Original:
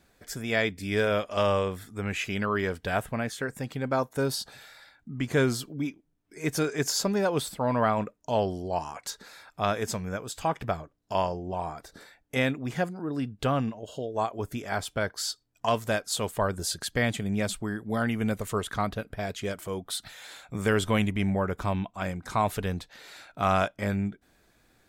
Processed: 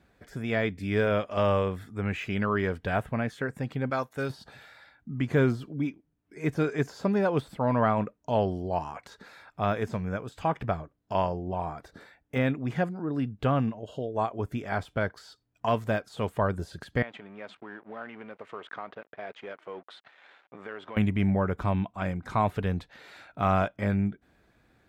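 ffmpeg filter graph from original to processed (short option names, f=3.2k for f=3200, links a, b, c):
-filter_complex "[0:a]asettb=1/sr,asplit=3[a][b][c];[a]atrim=end=3.904[d];[b]atrim=start=3.9:end=4.3,asetpts=PTS-STARTPTS,afade=t=in:d=0.004:c=qsin,afade=t=out:st=0.396:d=0.004:c=qsin,tiltshelf=f=1.2k:g=-7,bandreject=f=950:w=14[e];[c]atrim=start=4.296[f];[d][e]acrossfade=d=0.004:c1=hsin:c2=qsin[g];[g][f]acrossfade=d=0.004:c1=qsin:c2=hsin,asettb=1/sr,asplit=3[h][i][j];[h]atrim=end=17.024[k];[i]atrim=start=17.02:end=20.97,asetpts=PTS-STARTPTS,afade=t=in:d=0.004:c=qsin,afade=t=out:st=3.946:d=0.004:c=qsin,acompressor=threshold=-29dB:ratio=12:attack=3.2:release=140:knee=1:detection=peak,aeval=exprs='sgn(val(0))*max(abs(val(0))-0.00376,0)':c=same,highpass=450,lowpass=2.8k[l];[j]atrim=start=20.966[m];[k][l]acrossfade=d=0.004:c1=hsin:c2=qsin[n];[n][m]acrossfade=d=0.004:c1=qsin:c2=hsin,deesser=0.9,highpass=42,bass=f=250:g=3,treble=f=4k:g=-12"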